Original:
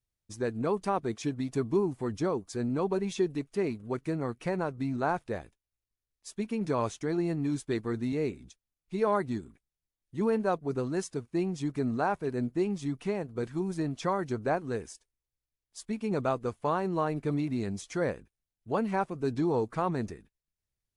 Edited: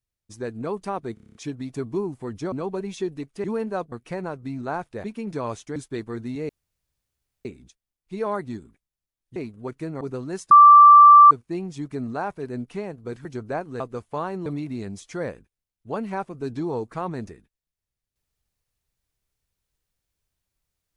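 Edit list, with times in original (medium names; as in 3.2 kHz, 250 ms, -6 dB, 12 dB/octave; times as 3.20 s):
1.14 s: stutter 0.03 s, 8 plays
2.31–2.70 s: delete
3.62–4.27 s: swap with 10.17–10.65 s
5.39–6.38 s: delete
7.10–7.53 s: delete
8.26 s: insert room tone 0.96 s
11.15 s: add tone 1.17 kHz -6 dBFS 0.80 s
12.49–12.96 s: delete
13.56–14.21 s: delete
14.76–16.31 s: delete
16.97–17.27 s: delete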